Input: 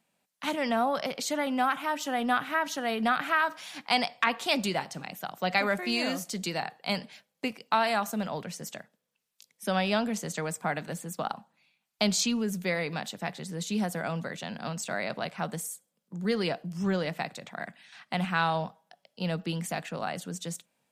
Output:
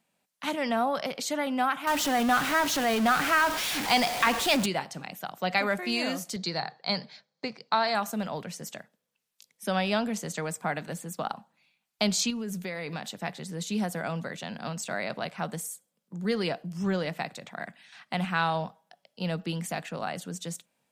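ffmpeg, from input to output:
-filter_complex "[0:a]asettb=1/sr,asplit=3[s0][s1][s2];[s0]atrim=end=1.874[s3];[s1]atrim=start=1.87:end=4.66,asetpts=PTS-STARTPTS,afade=t=in:d=0.004:c=qsin,afade=t=out:st=2.786:d=0.004:c=qsin,aeval=exprs='val(0)+0.5*0.0501*sgn(val(0))':c=same[s4];[s2]atrim=start=4.656[s5];[s3][s4]acrossfade=d=0.004:c1=hsin:c2=qsin[s6];[s6][s5]acrossfade=d=0.004:c1=qsin:c2=hsin,asettb=1/sr,asplit=3[s7][s8][s9];[s7]atrim=end=6.364[s10];[s8]atrim=start=6.36:end=7.95,asetpts=PTS-STARTPTS,afade=t=in:d=0.004:c=qsin,afade=t=out:st=1.586:d=0.004:c=qsin,highpass=120,equalizer=f=140:t=q:w=4:g=6,equalizer=f=260:t=q:w=4:g=-5,equalizer=f=2800:t=q:w=4:g=-9,equalizer=f=4300:t=q:w=4:g=8,lowpass=f=5900:w=0.5412,lowpass=f=5900:w=1.3066[s11];[s9]atrim=start=7.946[s12];[s10][s11]acrossfade=d=0.004:c1=hsin:c2=qsin[s13];[s13][s12]acrossfade=d=0.004:c1=qsin:c2=hsin,asettb=1/sr,asplit=3[s14][s15][s16];[s14]atrim=end=12.304[s17];[s15]atrim=start=12.3:end=13.2,asetpts=PTS-STARTPTS,afade=t=in:d=0.004:c=qsin,afade=t=out:st=0.896:d=0.004:c=qsin,acompressor=threshold=0.0316:ratio=6:attack=3.2:release=140:knee=1:detection=peak[s18];[s16]atrim=start=13.196[s19];[s17][s18]acrossfade=d=0.004:c1=hsin:c2=qsin[s20];[s20][s19]acrossfade=d=0.004:c1=qsin:c2=hsin"

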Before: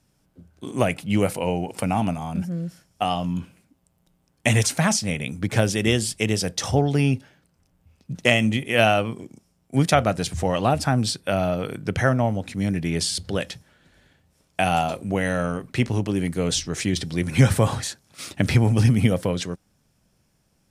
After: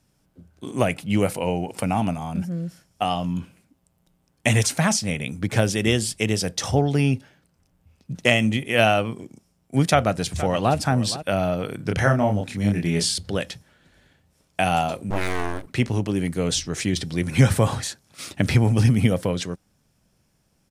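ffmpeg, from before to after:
-filter_complex "[0:a]asplit=2[s0][s1];[s1]afade=t=in:st=9.86:d=0.01,afade=t=out:st=10.75:d=0.01,aecho=0:1:470|940:0.199526|0.0299289[s2];[s0][s2]amix=inputs=2:normalize=0,asettb=1/sr,asplit=3[s3][s4][s5];[s3]atrim=end=11.764[s6];[s4]atrim=start=11.76:end=13.14,asetpts=PTS-STARTPTS,afade=t=in:d=0.004:c=qsin,afade=t=out:st=1.376:d=0.004:c=qsin,asplit=2[s7][s8];[s8]adelay=29,volume=0.708[s9];[s7][s9]amix=inputs=2:normalize=0,atrim=end_sample=60858[s10];[s5]atrim=start=13.136[s11];[s6][s10]acrossfade=d=0.004:c1=hsin:c2=qsin[s12];[s12][s11]acrossfade=d=0.004:c1=qsin:c2=hsin,asettb=1/sr,asplit=3[s13][s14][s15];[s13]atrim=end=15.104[s16];[s14]atrim=start=15.1:end=15.67,asetpts=PTS-STARTPTS,afade=t=in:d=0.004:c=qsin,afade=t=out:st=0.566:d=0.004:c=qsin,aeval=exprs='abs(val(0))':c=same[s17];[s15]atrim=start=15.666[s18];[s16][s17]acrossfade=d=0.004:c1=hsin:c2=qsin[s19];[s19][s18]acrossfade=d=0.004:c1=qsin:c2=hsin"

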